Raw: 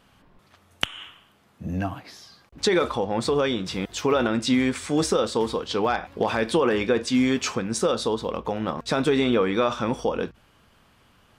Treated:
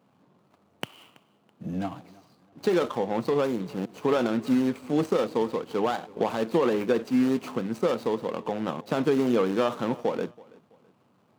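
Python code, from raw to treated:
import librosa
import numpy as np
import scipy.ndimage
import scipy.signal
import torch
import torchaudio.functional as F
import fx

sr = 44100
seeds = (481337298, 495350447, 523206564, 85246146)

p1 = scipy.ndimage.median_filter(x, 25, mode='constant')
p2 = scipy.signal.sosfilt(scipy.signal.butter(4, 130.0, 'highpass', fs=sr, output='sos'), p1)
p3 = p2 + fx.echo_feedback(p2, sr, ms=329, feedback_pct=34, wet_db=-23, dry=0)
y = p3 * librosa.db_to_amplitude(-1.5)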